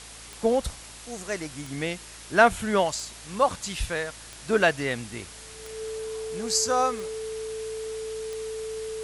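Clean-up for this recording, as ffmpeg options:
ffmpeg -i in.wav -af "adeclick=threshold=4,bandreject=frequency=55.7:width_type=h:width=4,bandreject=frequency=111.4:width_type=h:width=4,bandreject=frequency=167.1:width_type=h:width=4,bandreject=frequency=222.8:width_type=h:width=4,bandreject=frequency=278.5:width_type=h:width=4,bandreject=frequency=440:width=30,afwtdn=0.0079" out.wav

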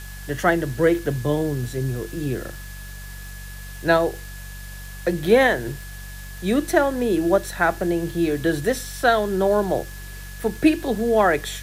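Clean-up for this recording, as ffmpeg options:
ffmpeg -i in.wav -af "adeclick=threshold=4,bandreject=frequency=47.7:width_type=h:width=4,bandreject=frequency=95.4:width_type=h:width=4,bandreject=frequency=143.1:width_type=h:width=4,bandreject=frequency=190.8:width_type=h:width=4,bandreject=frequency=1700:width=30,afwtdn=0.0071" out.wav

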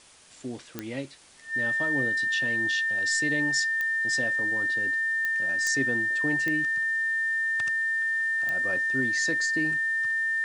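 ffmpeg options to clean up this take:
ffmpeg -i in.wav -af "adeclick=threshold=4,bandreject=frequency=1800:width=30,afwtdn=0.0025" out.wav

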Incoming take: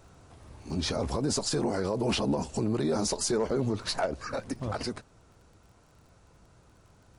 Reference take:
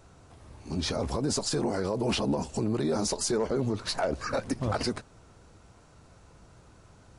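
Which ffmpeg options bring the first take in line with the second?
ffmpeg -i in.wav -af "adeclick=threshold=4,asetnsamples=nb_out_samples=441:pad=0,asendcmd='4.06 volume volume 4dB',volume=0dB" out.wav

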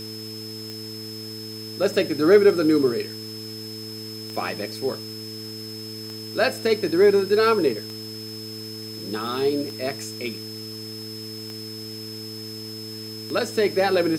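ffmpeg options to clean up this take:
ffmpeg -i in.wav -af "adeclick=threshold=4,bandreject=frequency=109:width_type=h:width=4,bandreject=frequency=218:width_type=h:width=4,bandreject=frequency=327:width_type=h:width=4,bandreject=frequency=436:width_type=h:width=4,bandreject=frequency=5200:width=30,afwtdn=0.0056" out.wav

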